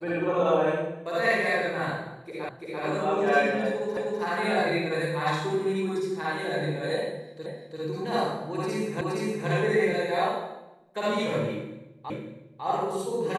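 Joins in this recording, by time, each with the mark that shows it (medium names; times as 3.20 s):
2.49 s: repeat of the last 0.34 s
3.97 s: repeat of the last 0.25 s
7.46 s: repeat of the last 0.34 s
9.01 s: repeat of the last 0.47 s
12.10 s: repeat of the last 0.55 s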